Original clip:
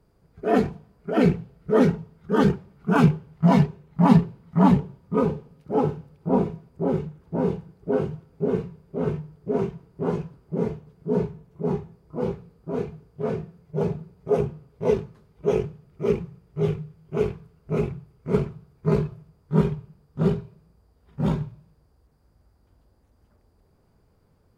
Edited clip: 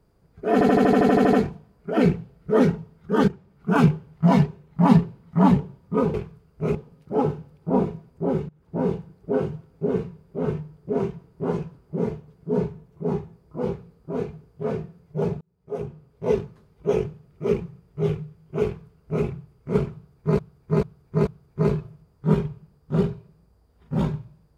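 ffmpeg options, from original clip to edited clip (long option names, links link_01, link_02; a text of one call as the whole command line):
ffmpeg -i in.wav -filter_complex "[0:a]asplit=19[link_01][link_02][link_03][link_04][link_05][link_06][link_07][link_08][link_09][link_10][link_11][link_12][link_13][link_14][link_15][link_16][link_17][link_18][link_19];[link_01]atrim=end=0.612[link_20];[link_02]atrim=start=0.528:end=0.612[link_21];[link_03]atrim=start=0.528:end=0.612[link_22];[link_04]atrim=start=0.528:end=0.612[link_23];[link_05]atrim=start=0.528:end=0.612[link_24];[link_06]atrim=start=0.528:end=0.612[link_25];[link_07]atrim=start=0.528:end=0.612[link_26];[link_08]atrim=start=0.528:end=0.612[link_27];[link_09]atrim=start=0.528:end=0.612[link_28];[link_10]atrim=start=0.528:end=0.612[link_29];[link_11]atrim=start=0.528:end=2.48,asetpts=PTS-STARTPTS,afade=type=out:start_time=1.948:duration=0.004:curve=hsin:silence=0.149624[link_30];[link_12]atrim=start=2.48:end=5.342,asetpts=PTS-STARTPTS,afade=type=in:duration=0.43:silence=0.149624[link_31];[link_13]atrim=start=17.228:end=17.842[link_32];[link_14]atrim=start=5.338:end=7.08,asetpts=PTS-STARTPTS,afade=type=out:start_time=1.738:duration=0.004:curve=hsin:silence=0.0749894[link_33];[link_15]atrim=start=7.08:end=14,asetpts=PTS-STARTPTS,afade=type=in:duration=0.29:silence=0.0749894,afade=type=out:start_time=6.916:duration=0.004:curve=hsin[link_34];[link_16]atrim=start=14:end=18.982,asetpts=PTS-STARTPTS,afade=type=in:duration=0.96[link_35];[link_17]atrim=start=18.538:end=18.982[link_36];[link_18]atrim=start=18.538:end=18.982[link_37];[link_19]atrim=start=18.538[link_38];[link_20][link_21]acrossfade=duration=0.004:curve1=hsin:curve2=hsin[link_39];[link_39][link_22]acrossfade=duration=0.004:curve1=hsin:curve2=hsin[link_40];[link_40][link_23]acrossfade=duration=0.004:curve1=hsin:curve2=hsin[link_41];[link_41][link_24]acrossfade=duration=0.004:curve1=hsin:curve2=hsin[link_42];[link_42][link_25]acrossfade=duration=0.004:curve1=hsin:curve2=hsin[link_43];[link_43][link_26]acrossfade=duration=0.004:curve1=hsin:curve2=hsin[link_44];[link_44][link_27]acrossfade=duration=0.004:curve1=hsin:curve2=hsin[link_45];[link_45][link_28]acrossfade=duration=0.004:curve1=hsin:curve2=hsin[link_46];[link_46][link_29]acrossfade=duration=0.004:curve1=hsin:curve2=hsin[link_47];[link_30][link_31]concat=n=2:v=0:a=1[link_48];[link_47][link_48]acrossfade=duration=0.004:curve1=hsin:curve2=hsin[link_49];[link_49][link_32]acrossfade=duration=0.004:curve1=hsin:curve2=hsin[link_50];[link_33][link_34][link_35]concat=n=3:v=0:a=1[link_51];[link_50][link_51]acrossfade=duration=0.004:curve1=hsin:curve2=hsin[link_52];[link_52][link_36]acrossfade=duration=0.004:curve1=hsin:curve2=hsin[link_53];[link_53][link_37]acrossfade=duration=0.004:curve1=hsin:curve2=hsin[link_54];[link_54][link_38]acrossfade=duration=0.004:curve1=hsin:curve2=hsin" out.wav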